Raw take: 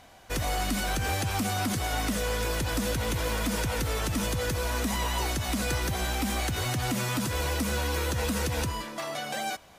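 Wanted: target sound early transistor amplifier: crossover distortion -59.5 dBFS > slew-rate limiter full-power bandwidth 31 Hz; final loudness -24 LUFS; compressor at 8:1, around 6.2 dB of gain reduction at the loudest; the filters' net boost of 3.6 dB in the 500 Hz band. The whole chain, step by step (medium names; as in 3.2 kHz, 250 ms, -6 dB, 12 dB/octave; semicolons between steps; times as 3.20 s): peaking EQ 500 Hz +4 dB; compression 8:1, threshold -30 dBFS; crossover distortion -59.5 dBFS; slew-rate limiter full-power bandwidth 31 Hz; trim +11 dB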